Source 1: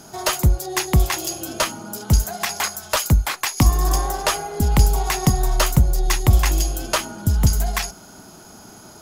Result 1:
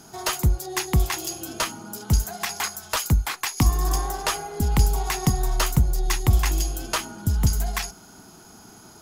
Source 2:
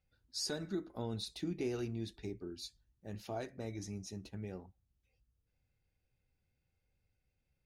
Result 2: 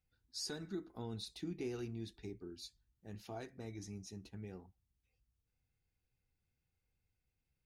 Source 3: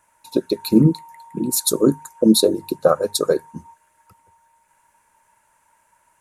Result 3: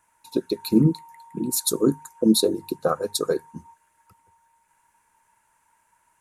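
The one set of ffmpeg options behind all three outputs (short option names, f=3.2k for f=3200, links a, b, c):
-af "equalizer=f=580:w=7.5:g=-10.5,volume=-4dB"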